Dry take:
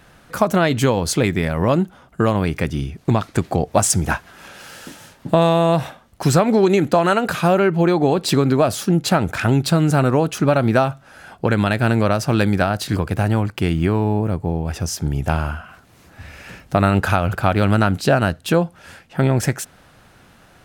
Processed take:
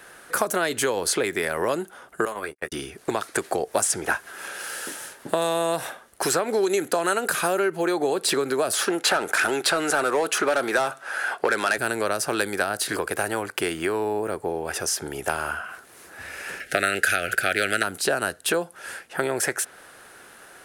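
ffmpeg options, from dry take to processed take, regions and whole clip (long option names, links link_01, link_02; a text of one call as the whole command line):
ffmpeg -i in.wav -filter_complex "[0:a]asettb=1/sr,asplit=3[link_01][link_02][link_03];[link_01]atrim=end=2.254[link_04];[link_02]atrim=start=2.25:end=2.72,asetpts=PTS-STARTPTS,afade=type=in:duration=0.004:curve=qsin,afade=type=out:start_time=0.466:duration=0.004:curve=qsin,agate=range=-53dB:threshold=-19dB:ratio=16:release=100:detection=peak,asplit=2[link_05][link_06];[link_06]adelay=14,volume=-8dB[link_07];[link_05][link_07]amix=inputs=2:normalize=0,atrim=end_sample=20727,acrossover=split=800|2000|6200[link_08][link_09][link_10][link_11];[link_08]acompressor=threshold=-32dB:ratio=3[link_12];[link_09]acompressor=threshold=-29dB:ratio=3[link_13];[link_10]acompressor=threshold=-51dB:ratio=3[link_14];[link_11]acompressor=threshold=-52dB:ratio=3[link_15];[link_12][link_13][link_14][link_15]amix=inputs=4:normalize=0[link_16];[link_03]atrim=start=2.716[link_17];[link_04][link_16]acrossfade=duration=0.004:curve1=hsin:curve2=qsin[link_18];[link_18][link_17]acrossfade=duration=0.004:curve1=qsin:curve2=hsin,asettb=1/sr,asplit=3[link_19][link_20][link_21];[link_19]atrim=end=8.734[link_22];[link_20]atrim=start=8.73:end=11.78,asetpts=PTS-STARTPTS,afade=type=in:duration=0.004:curve=qsin,afade=type=out:start_time=3.046:duration=0.004:curve=qsin,lowshelf=frequency=190:gain=-10.5,asplit=2[link_23][link_24];[link_24]highpass=frequency=720:poles=1,volume=17dB,asoftclip=type=tanh:threshold=-3.5dB[link_25];[link_23][link_25]amix=inputs=2:normalize=0,lowpass=frequency=2700:poles=1,volume=-6dB[link_26];[link_21]atrim=start=11.776[link_27];[link_22][link_26]acrossfade=duration=0.004:curve1=hsin:curve2=qsin[link_28];[link_28][link_27]acrossfade=duration=0.004:curve1=qsin:curve2=hsin,asettb=1/sr,asplit=3[link_29][link_30][link_31];[link_29]atrim=end=16.604[link_32];[link_30]atrim=start=16.6:end=17.83,asetpts=PTS-STARTPTS,afade=type=in:duration=0.004:curve=qsin,afade=type=out:start_time=1.226:duration=0.004:curve=qsin,asuperstop=centerf=1000:order=4:qfactor=1.2,equalizer=frequency=1900:width=0.56:gain=13[link_33];[link_31]atrim=start=17.826[link_34];[link_32][link_33]acrossfade=duration=0.004:curve1=hsin:curve2=qsin[link_35];[link_35][link_34]acrossfade=duration=0.004:curve1=qsin:curve2=hsin,equalizer=frequency=400:width_type=o:width=0.67:gain=7,equalizer=frequency=1600:width_type=o:width=0.67:gain=7,equalizer=frequency=10000:width_type=o:width=0.67:gain=11,acrossover=split=340|4600[link_36][link_37][link_38];[link_36]acompressor=threshold=-27dB:ratio=4[link_39];[link_37]acompressor=threshold=-22dB:ratio=4[link_40];[link_38]acompressor=threshold=-28dB:ratio=4[link_41];[link_39][link_40][link_41]amix=inputs=3:normalize=0,bass=frequency=250:gain=-15,treble=frequency=4000:gain=2" out.wav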